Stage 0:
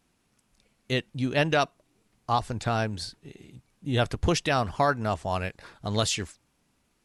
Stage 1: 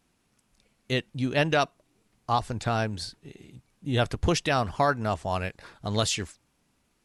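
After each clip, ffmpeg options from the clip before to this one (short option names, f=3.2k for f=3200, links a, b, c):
-af anull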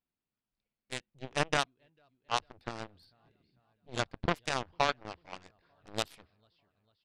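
-af "aecho=1:1:447|894|1341|1788|2235:0.1|0.058|0.0336|0.0195|0.0113,aresample=11025,aresample=44100,aeval=exprs='0.266*(cos(1*acos(clip(val(0)/0.266,-1,1)))-cos(1*PI/2))+0.0944*(cos(3*acos(clip(val(0)/0.266,-1,1)))-cos(3*PI/2))+0.00376*(cos(4*acos(clip(val(0)/0.266,-1,1)))-cos(4*PI/2))':c=same"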